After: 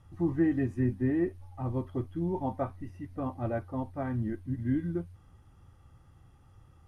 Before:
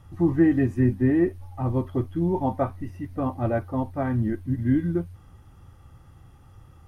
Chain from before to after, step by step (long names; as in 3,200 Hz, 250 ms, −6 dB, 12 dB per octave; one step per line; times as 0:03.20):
low-pass filter 12,000 Hz 24 dB per octave
level −7.5 dB